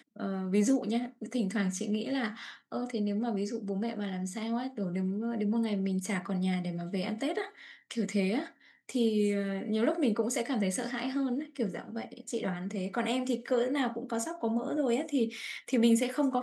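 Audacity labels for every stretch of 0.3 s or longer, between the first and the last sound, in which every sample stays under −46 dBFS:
8.490000	8.890000	silence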